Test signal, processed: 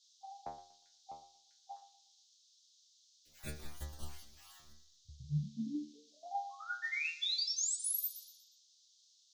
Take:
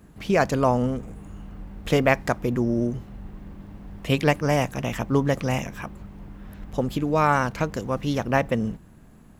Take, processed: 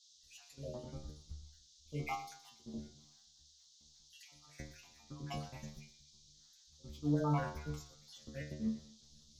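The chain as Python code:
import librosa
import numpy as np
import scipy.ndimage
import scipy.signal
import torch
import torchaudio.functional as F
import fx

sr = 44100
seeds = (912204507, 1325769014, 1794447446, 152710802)

p1 = fx.spec_dropout(x, sr, seeds[0], share_pct=50)
p2 = fx.low_shelf(p1, sr, hz=130.0, db=10.5)
p3 = fx.auto_swell(p2, sr, attack_ms=222.0)
p4 = fx.level_steps(p3, sr, step_db=16)
p5 = fx.stiff_resonator(p4, sr, f0_hz=73.0, decay_s=0.58, stiffness=0.002)
p6 = p5 + fx.echo_feedback(p5, sr, ms=120, feedback_pct=46, wet_db=-14.0, dry=0)
p7 = fx.dmg_noise_band(p6, sr, seeds[1], low_hz=3400.0, high_hz=6700.0, level_db=-65.0)
p8 = fx.band_widen(p7, sr, depth_pct=70)
y = F.gain(torch.from_numpy(p8), 2.0).numpy()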